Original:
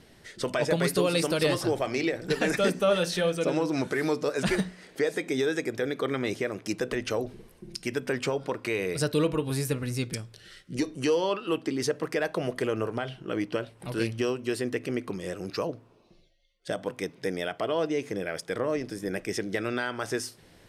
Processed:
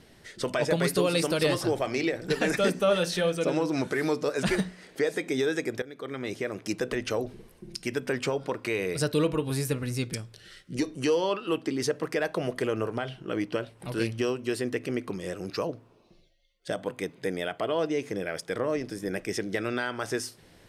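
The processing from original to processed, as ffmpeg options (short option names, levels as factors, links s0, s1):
-filter_complex "[0:a]asettb=1/sr,asplit=3[s0][s1][s2];[s0]atrim=end=16.814[s3];[s1]atrim=start=16.81:end=17.79,asetpts=PTS-STARTPTS,afade=t=in:d=0.004:c=qsin,afade=t=out:st=0.976:d=0.004:c=qsin,bandreject=f=5500:w=5.5[s4];[s2]atrim=start=17.786[s5];[s3][s4]acrossfade=d=0.004:c1=hsin:c2=qsin[s6];[s6][s5]acrossfade=d=0.004:c1=qsin:c2=hsin,asplit=2[s7][s8];[s7]atrim=end=5.82,asetpts=PTS-STARTPTS,afade=t=out:st=5.816:d=0.004:c=hsin:silence=0.133352[s9];[s8]atrim=start=5.82,asetpts=PTS-STARTPTS,afade=t=in:d=0.79:silence=0.133352[s10];[s9][s10]concat=n=2:v=0:a=1"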